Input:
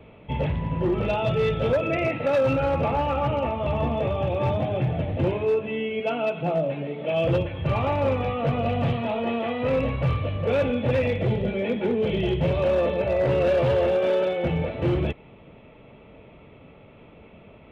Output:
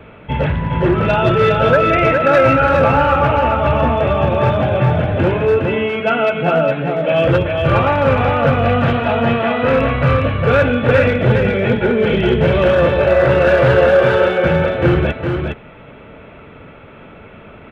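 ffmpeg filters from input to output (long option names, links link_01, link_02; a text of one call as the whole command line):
ffmpeg -i in.wav -af "equalizer=frequency=1500:width_type=o:width=0.53:gain=13,aecho=1:1:411:0.596,volume=8dB" out.wav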